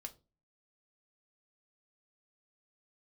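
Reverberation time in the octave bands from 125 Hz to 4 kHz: 0.55, 0.45, 0.35, 0.25, 0.20, 0.25 seconds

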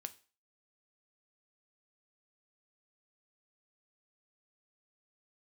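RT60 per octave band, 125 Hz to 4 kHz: 0.30, 0.35, 0.35, 0.40, 0.40, 0.35 seconds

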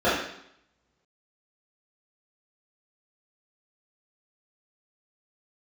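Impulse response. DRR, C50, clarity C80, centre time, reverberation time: −12.5 dB, 2.0 dB, 6.0 dB, 58 ms, 0.75 s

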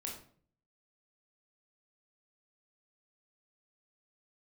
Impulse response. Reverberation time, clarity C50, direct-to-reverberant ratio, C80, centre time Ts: 0.50 s, 5.5 dB, −1.5 dB, 9.5 dB, 31 ms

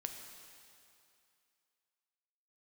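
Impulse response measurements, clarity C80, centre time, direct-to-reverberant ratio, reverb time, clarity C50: 6.0 dB, 57 ms, 4.0 dB, 2.5 s, 5.0 dB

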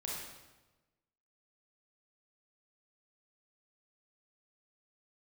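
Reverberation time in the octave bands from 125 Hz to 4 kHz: 1.4, 1.3, 1.2, 1.1, 1.0, 0.90 seconds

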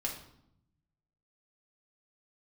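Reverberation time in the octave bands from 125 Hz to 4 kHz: 1.5, 1.2, 0.75, 0.75, 0.60, 0.55 seconds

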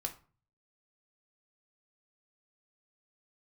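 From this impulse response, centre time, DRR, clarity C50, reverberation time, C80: 9 ms, 2.5 dB, 13.5 dB, 0.40 s, 19.0 dB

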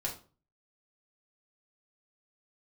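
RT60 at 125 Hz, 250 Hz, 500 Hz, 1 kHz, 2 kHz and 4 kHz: 0.55, 0.45, 0.40, 0.35, 0.30, 0.30 seconds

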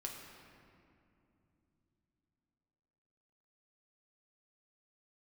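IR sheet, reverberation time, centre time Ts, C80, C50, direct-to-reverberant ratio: 2.8 s, 83 ms, 4.0 dB, 2.5 dB, −1.0 dB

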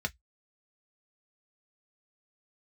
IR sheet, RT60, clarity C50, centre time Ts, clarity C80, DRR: 0.10 s, 32.0 dB, 3 ms, 48.0 dB, 3.5 dB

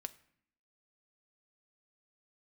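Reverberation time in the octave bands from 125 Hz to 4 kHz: 0.75, 0.95, 0.60, 0.65, 0.65, 0.50 seconds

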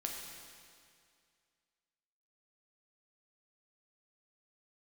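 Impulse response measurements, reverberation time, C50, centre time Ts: 2.2 s, 2.0 dB, 85 ms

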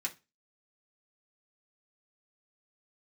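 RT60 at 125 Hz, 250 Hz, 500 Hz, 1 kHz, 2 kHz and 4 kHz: 0.30, 0.30, 0.25, 0.25, 0.25, 0.25 seconds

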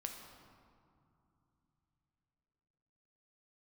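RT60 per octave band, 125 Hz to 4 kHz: 4.4, 3.9, 2.7, 2.9, 1.9, 1.2 seconds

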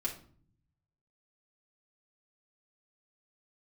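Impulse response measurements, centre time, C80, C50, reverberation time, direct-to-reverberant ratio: 14 ms, 15.0 dB, 10.0 dB, 0.50 s, −3.5 dB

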